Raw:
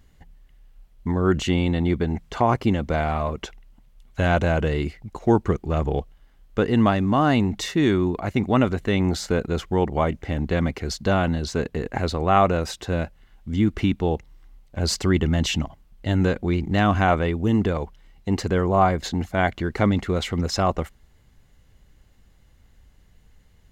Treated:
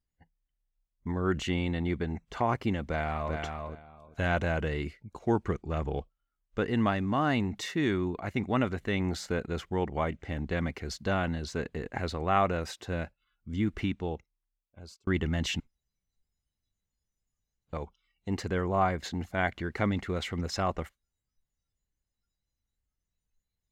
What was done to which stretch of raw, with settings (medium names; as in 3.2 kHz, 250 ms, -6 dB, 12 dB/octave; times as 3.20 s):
2.86–3.36 s: echo throw 390 ms, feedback 20%, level -5 dB
13.76–15.07 s: fade out
15.60–17.73 s: room tone
whole clip: spectral noise reduction 22 dB; dynamic bell 1.9 kHz, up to +5 dB, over -41 dBFS, Q 1.3; trim -9 dB